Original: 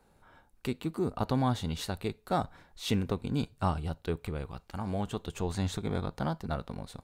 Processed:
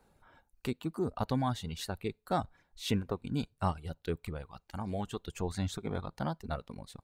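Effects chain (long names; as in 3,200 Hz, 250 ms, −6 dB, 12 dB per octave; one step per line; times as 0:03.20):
reverb reduction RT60 1.3 s
level −1.5 dB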